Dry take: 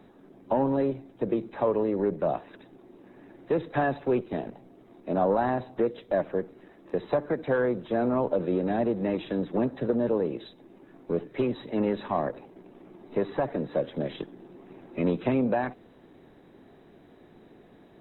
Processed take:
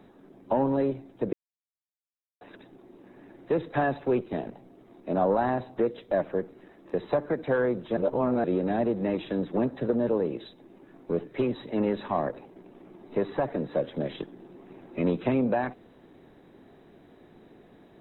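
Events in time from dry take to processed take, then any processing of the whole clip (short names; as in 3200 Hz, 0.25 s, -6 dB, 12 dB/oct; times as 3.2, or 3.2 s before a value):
1.33–2.41 mute
7.97–8.44 reverse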